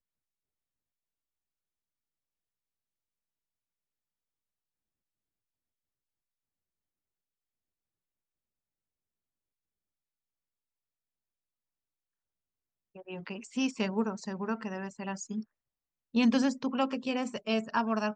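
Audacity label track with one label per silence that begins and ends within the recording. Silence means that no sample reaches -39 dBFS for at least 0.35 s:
15.420000	16.150000	silence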